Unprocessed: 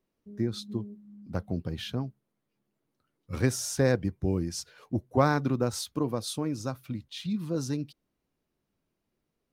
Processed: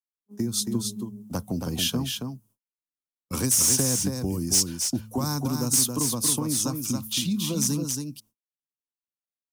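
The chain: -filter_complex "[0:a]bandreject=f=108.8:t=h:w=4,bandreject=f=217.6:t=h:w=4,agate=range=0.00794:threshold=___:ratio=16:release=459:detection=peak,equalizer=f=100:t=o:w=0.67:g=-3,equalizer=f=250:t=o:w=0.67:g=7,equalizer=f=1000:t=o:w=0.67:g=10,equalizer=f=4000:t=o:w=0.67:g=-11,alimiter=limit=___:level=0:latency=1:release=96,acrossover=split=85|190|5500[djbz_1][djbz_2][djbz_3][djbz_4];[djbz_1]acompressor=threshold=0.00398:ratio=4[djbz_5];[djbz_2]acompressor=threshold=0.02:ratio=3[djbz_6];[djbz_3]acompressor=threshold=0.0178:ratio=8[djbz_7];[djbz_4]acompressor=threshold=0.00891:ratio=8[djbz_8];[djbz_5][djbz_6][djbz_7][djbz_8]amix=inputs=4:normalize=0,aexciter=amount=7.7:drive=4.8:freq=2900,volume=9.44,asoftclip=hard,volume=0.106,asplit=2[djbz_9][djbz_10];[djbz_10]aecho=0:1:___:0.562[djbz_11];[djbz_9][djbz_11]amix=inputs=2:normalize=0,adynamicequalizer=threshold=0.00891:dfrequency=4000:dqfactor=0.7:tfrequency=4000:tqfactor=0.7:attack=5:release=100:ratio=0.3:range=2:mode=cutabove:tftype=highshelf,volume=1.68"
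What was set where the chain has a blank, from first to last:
0.00708, 0.355, 275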